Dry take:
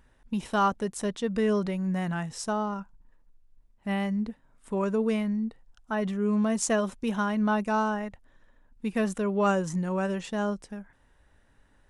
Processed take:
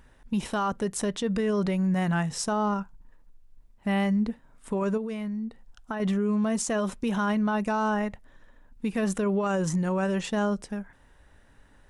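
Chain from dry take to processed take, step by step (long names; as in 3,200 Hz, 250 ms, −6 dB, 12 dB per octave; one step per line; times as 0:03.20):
brickwall limiter −25 dBFS, peak gain reduction 11.5 dB
on a send at −22.5 dB: convolution reverb RT60 0.25 s, pre-delay 3 ms
0:04.97–0:06.00: on the sum: downward compressor 10 to 1, threshold −35 dBFS, peak gain reduction 8 dB
level +5.5 dB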